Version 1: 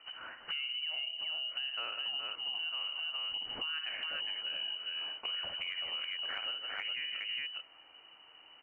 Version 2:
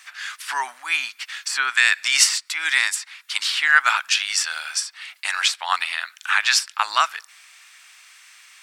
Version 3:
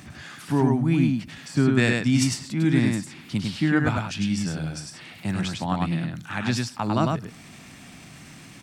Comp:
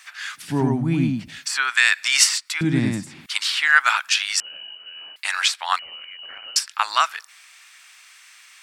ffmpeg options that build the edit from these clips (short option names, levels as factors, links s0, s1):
-filter_complex "[2:a]asplit=2[s0][s1];[0:a]asplit=2[s2][s3];[1:a]asplit=5[s4][s5][s6][s7][s8];[s4]atrim=end=0.57[s9];[s0]atrim=start=0.33:end=1.47[s10];[s5]atrim=start=1.23:end=2.612[s11];[s1]atrim=start=2.608:end=3.262[s12];[s6]atrim=start=3.258:end=4.402[s13];[s2]atrim=start=4.398:end=5.162[s14];[s7]atrim=start=5.158:end=5.792[s15];[s3]atrim=start=5.788:end=6.562[s16];[s8]atrim=start=6.558[s17];[s9][s10]acrossfade=d=0.24:c1=tri:c2=tri[s18];[s18][s11]acrossfade=d=0.24:c1=tri:c2=tri[s19];[s19][s12]acrossfade=d=0.004:c1=hsin:c2=hsin[s20];[s20][s13]acrossfade=d=0.004:c1=hsin:c2=hsin[s21];[s21][s14]acrossfade=d=0.004:c1=hsin:c2=hsin[s22];[s22][s15]acrossfade=d=0.004:c1=hsin:c2=hsin[s23];[s23][s16]acrossfade=d=0.004:c1=hsin:c2=hsin[s24];[s24][s17]acrossfade=d=0.004:c1=hsin:c2=hsin"